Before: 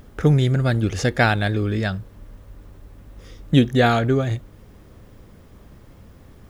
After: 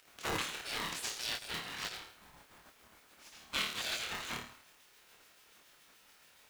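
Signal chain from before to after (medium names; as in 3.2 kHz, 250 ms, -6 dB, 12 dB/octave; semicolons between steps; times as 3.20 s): rotary cabinet horn 7 Hz; whistle 1.6 kHz -50 dBFS; flutter echo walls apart 4.6 m, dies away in 0.54 s; spectral gate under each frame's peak -30 dB weak; polarity switched at an audio rate 430 Hz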